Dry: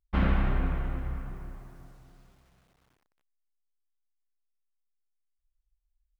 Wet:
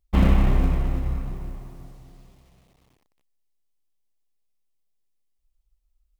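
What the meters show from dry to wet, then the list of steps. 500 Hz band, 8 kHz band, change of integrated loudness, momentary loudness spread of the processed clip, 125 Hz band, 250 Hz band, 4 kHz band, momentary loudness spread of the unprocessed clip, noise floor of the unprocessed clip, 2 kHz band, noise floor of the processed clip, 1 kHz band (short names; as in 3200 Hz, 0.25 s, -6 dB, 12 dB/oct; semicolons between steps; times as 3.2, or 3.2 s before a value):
+6.5 dB, n/a, +7.5 dB, 19 LU, +8.0 dB, +7.5 dB, +6.5 dB, 19 LU, -78 dBFS, +1.0 dB, -70 dBFS, +3.5 dB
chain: bell 1500 Hz -11.5 dB 0.44 oct; in parallel at -12 dB: sample-rate reducer 1300 Hz; on the sum: gain +6 dB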